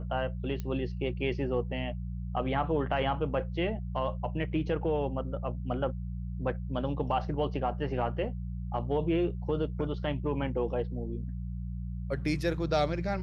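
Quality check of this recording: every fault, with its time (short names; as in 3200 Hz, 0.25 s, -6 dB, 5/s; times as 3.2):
hum 60 Hz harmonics 3 -36 dBFS
0.6 pop -23 dBFS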